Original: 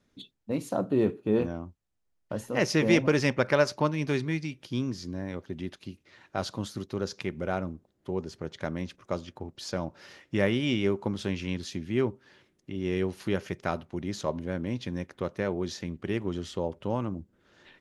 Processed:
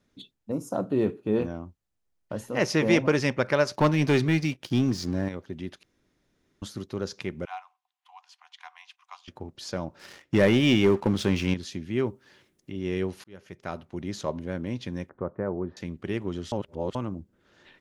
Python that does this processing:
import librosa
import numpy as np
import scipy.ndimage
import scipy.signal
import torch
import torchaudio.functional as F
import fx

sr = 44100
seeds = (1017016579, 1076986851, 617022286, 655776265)

y = fx.spec_box(x, sr, start_s=0.52, length_s=0.22, low_hz=1500.0, high_hz=4900.0, gain_db=-18)
y = fx.peak_eq(y, sr, hz=920.0, db=3.5, octaves=1.7, at=(2.6, 3.16))
y = fx.leveller(y, sr, passes=2, at=(3.74, 5.29))
y = fx.cheby_ripple_highpass(y, sr, hz=720.0, ripple_db=9, at=(7.45, 9.28))
y = fx.leveller(y, sr, passes=2, at=(9.99, 11.54))
y = fx.high_shelf(y, sr, hz=7300.0, db=10.0, at=(12.05, 12.71))
y = fx.lowpass(y, sr, hz=1400.0, slope=24, at=(15.09, 15.77))
y = fx.edit(y, sr, fx.room_tone_fill(start_s=5.83, length_s=0.79),
    fx.fade_in_span(start_s=13.24, length_s=0.79),
    fx.reverse_span(start_s=16.52, length_s=0.43), tone=tone)